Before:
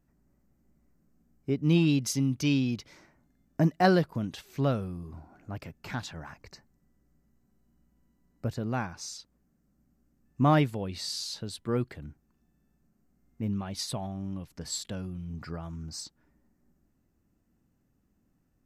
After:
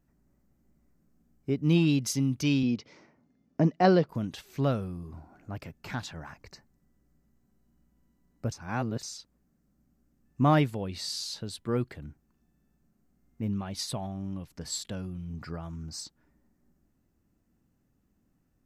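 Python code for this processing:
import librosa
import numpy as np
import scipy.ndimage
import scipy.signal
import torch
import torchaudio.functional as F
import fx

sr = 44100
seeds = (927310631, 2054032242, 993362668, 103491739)

y = fx.cabinet(x, sr, low_hz=110.0, low_slope=12, high_hz=5800.0, hz=(240.0, 460.0, 1600.0, 3800.0), db=(4, 6, -5, -4), at=(2.63, 4.09))
y = fx.edit(y, sr, fx.reverse_span(start_s=8.52, length_s=0.51), tone=tone)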